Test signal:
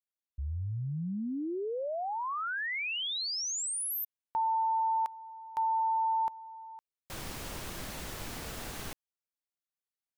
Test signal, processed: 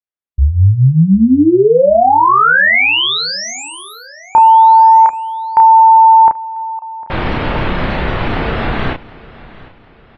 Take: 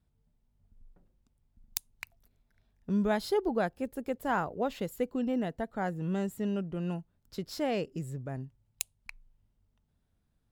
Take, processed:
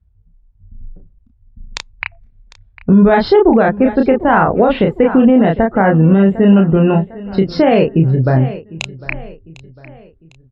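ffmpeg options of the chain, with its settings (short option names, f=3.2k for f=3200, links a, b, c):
-filter_complex "[0:a]lowpass=2.6k,afftdn=nr=24:nf=-57,acontrast=72,asplit=2[a][b];[b]adelay=31,volume=-4dB[c];[a][c]amix=inputs=2:normalize=0,aecho=1:1:752|1504|2256:0.1|0.041|0.0168,alimiter=level_in=18.5dB:limit=-1dB:release=50:level=0:latency=1,volume=-1dB"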